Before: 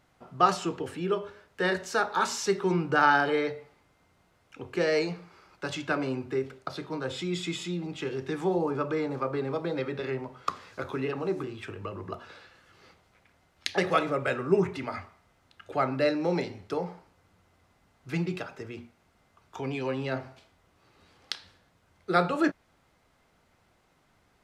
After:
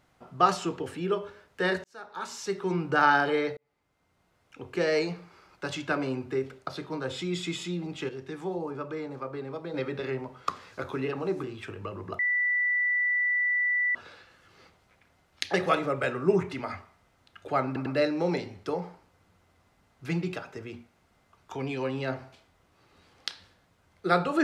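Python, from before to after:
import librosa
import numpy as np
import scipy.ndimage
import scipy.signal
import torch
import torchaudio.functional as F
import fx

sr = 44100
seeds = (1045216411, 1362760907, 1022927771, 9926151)

y = fx.edit(x, sr, fx.fade_in_span(start_s=1.84, length_s=1.18),
    fx.fade_in_span(start_s=3.57, length_s=1.53, curve='qsin'),
    fx.clip_gain(start_s=8.09, length_s=1.65, db=-6.0),
    fx.insert_tone(at_s=12.19, length_s=1.76, hz=1970.0, db=-23.0),
    fx.stutter(start_s=15.9, slice_s=0.1, count=3), tone=tone)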